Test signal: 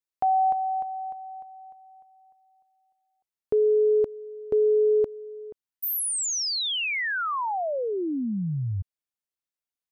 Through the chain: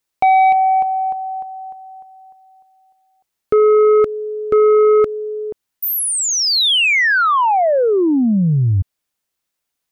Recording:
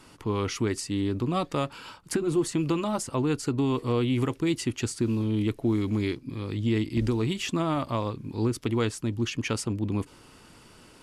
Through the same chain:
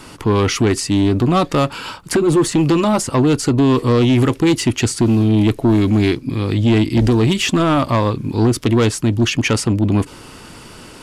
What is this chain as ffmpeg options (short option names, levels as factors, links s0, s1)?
-filter_complex "[0:a]acrossover=split=4000[s0][s1];[s1]acompressor=threshold=0.0224:ratio=4:attack=1:release=60[s2];[s0][s2]amix=inputs=2:normalize=0,asplit=2[s3][s4];[s4]aeval=exprs='0.188*sin(PI/2*2.51*val(0)/0.188)':c=same,volume=0.398[s5];[s3][s5]amix=inputs=2:normalize=0,volume=2.11"